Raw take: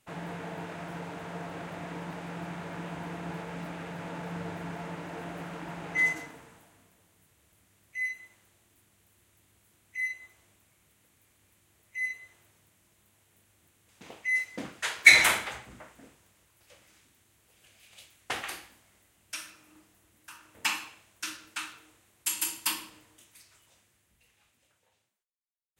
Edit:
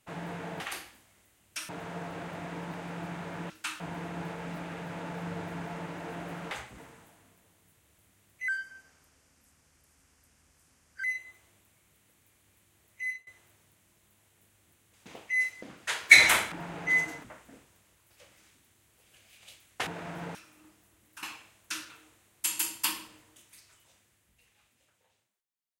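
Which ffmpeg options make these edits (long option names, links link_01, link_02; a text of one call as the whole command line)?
ffmpeg -i in.wav -filter_complex "[0:a]asplit=17[link_01][link_02][link_03][link_04][link_05][link_06][link_07][link_08][link_09][link_10][link_11][link_12][link_13][link_14][link_15][link_16][link_17];[link_01]atrim=end=0.602[link_18];[link_02]atrim=start=18.368:end=19.462[link_19];[link_03]atrim=start=1.078:end=2.892[link_20];[link_04]atrim=start=21.418:end=21.722[link_21];[link_05]atrim=start=2.888:end=5.602[link_22];[link_06]atrim=start=15.468:end=15.742[link_23];[link_07]atrim=start=6.318:end=8.024[link_24];[link_08]atrim=start=8.02:end=9.99,asetpts=PTS-STARTPTS,asetrate=33957,aresample=44100,atrim=end_sample=112827,asetpts=PTS-STARTPTS[link_25];[link_09]atrim=start=9.986:end=12.22,asetpts=PTS-STARTPTS,afade=type=out:start_time=1.984:duration=0.25:silence=0.0891251[link_26];[link_10]atrim=start=12.22:end=14.58,asetpts=PTS-STARTPTS,afade=type=in:duration=0.004:curve=hsin:silence=0.0891251,afade=type=out:start_time=2.356:duration=0.004:curve=hsin:silence=0.237137[link_27];[link_11]atrim=start=14.58:end=15.472,asetpts=PTS-STARTPTS,afade=type=in:duration=0.28:silence=0.237137[link_28];[link_12]atrim=start=5.598:end=6.322[link_29];[link_13]atrim=start=15.738:end=18.372[link_30];[link_14]atrim=start=0.598:end=1.082[link_31];[link_15]atrim=start=19.458:end=20.342[link_32];[link_16]atrim=start=20.748:end=21.422[link_33];[link_17]atrim=start=21.718[link_34];[link_18][link_19]acrossfade=duration=0.004:curve1=hsin:curve2=hsin[link_35];[link_35][link_20]acrossfade=duration=0.004:curve1=hsin:curve2=hsin[link_36];[link_36][link_21]acrossfade=duration=0.004:curve1=hsin:curve2=hsin[link_37];[link_37][link_22]acrossfade=duration=0.004:curve1=hsin:curve2=hsin[link_38];[link_38][link_23]acrossfade=duration=0.004:curve1=hsin:curve2=hsin[link_39];[link_39][link_24]acrossfade=duration=0.004:curve1=hsin:curve2=hsin[link_40];[link_40][link_25]acrossfade=duration=0.004:curve1=hsin:curve2=hsin[link_41];[link_26][link_27][link_28]concat=n=3:v=0:a=1[link_42];[link_41][link_42]acrossfade=duration=0.004:curve1=hsin:curve2=hsin[link_43];[link_43][link_29]acrossfade=duration=0.004:curve1=hsin:curve2=hsin[link_44];[link_44][link_30]acrossfade=duration=0.004:curve1=hsin:curve2=hsin[link_45];[link_45][link_31]acrossfade=duration=0.004:curve1=hsin:curve2=hsin[link_46];[link_46][link_32]acrossfade=duration=0.004:curve1=hsin:curve2=hsin[link_47];[link_47][link_33]acrossfade=duration=0.004:curve1=hsin:curve2=hsin[link_48];[link_48][link_34]acrossfade=duration=0.004:curve1=hsin:curve2=hsin" out.wav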